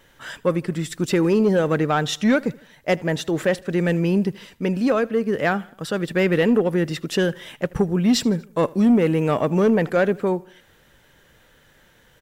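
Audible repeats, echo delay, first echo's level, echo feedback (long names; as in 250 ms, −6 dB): 2, 79 ms, −24.0 dB, 52%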